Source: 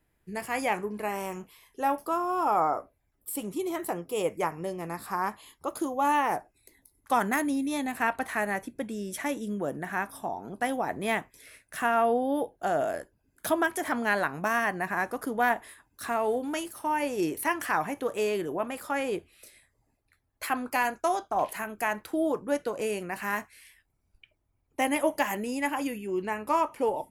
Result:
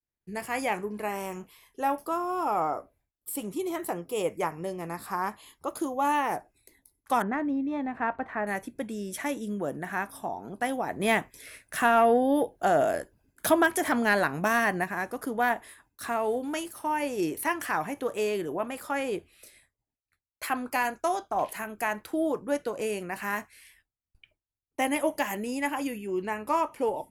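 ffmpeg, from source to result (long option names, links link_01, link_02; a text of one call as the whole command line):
ffmpeg -i in.wav -filter_complex "[0:a]asettb=1/sr,asplit=3[link_01][link_02][link_03];[link_01]atrim=end=7.224[link_04];[link_02]atrim=start=7.22:end=8.47,asetpts=PTS-STARTPTS,afade=type=in:duration=0.004:curve=qsin,afade=type=out:start_time=1.246:duration=0.004:curve=qsin,lowpass=1500[link_05];[link_03]atrim=start=8.466[link_06];[link_04][link_05]acrossfade=duration=0.004:curve1=hsin:curve2=qsin[link_07];[link_07][link_06]acrossfade=duration=0.004:curve1=qsin:curve2=hsin,asplit=3[link_08][link_09][link_10];[link_08]atrim=end=11.002[link_11];[link_09]atrim=start=10.998:end=14.842,asetpts=PTS-STARTPTS,volume=5dB[link_12];[link_10]atrim=start=14.838[link_13];[link_11][link_12]acrossfade=duration=0.004:curve1=hsin:curve2=hsin[link_14];[link_14][link_13]acrossfade=duration=0.004:curve1=hsin:curve2=hsin,acontrast=50,adynamicequalizer=threshold=0.0355:dfrequency=1100:dqfactor=0.82:tfrequency=1100:tqfactor=0.82:attack=5:release=100:ratio=0.375:range=2:mode=cutabove:tftype=bell,agate=range=-33dB:threshold=-53dB:ratio=3:detection=peak,volume=-6dB" out.wav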